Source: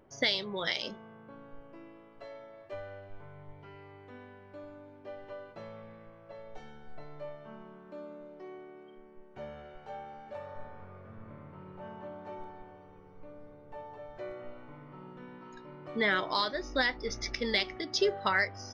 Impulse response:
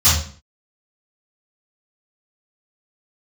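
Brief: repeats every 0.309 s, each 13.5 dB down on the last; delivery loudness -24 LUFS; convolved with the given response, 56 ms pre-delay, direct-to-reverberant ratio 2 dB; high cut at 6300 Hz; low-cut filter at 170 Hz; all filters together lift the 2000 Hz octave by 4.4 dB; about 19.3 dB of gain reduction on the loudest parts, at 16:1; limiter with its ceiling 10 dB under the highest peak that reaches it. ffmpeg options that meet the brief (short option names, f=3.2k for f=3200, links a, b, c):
-filter_complex "[0:a]highpass=170,lowpass=6.3k,equalizer=f=2k:t=o:g=5,acompressor=threshold=-40dB:ratio=16,alimiter=level_in=12dB:limit=-24dB:level=0:latency=1,volume=-12dB,aecho=1:1:309|618:0.211|0.0444,asplit=2[a][b];[1:a]atrim=start_sample=2205,adelay=56[c];[b][c]afir=irnorm=-1:irlink=0,volume=-23dB[d];[a][d]amix=inputs=2:normalize=0,volume=22.5dB"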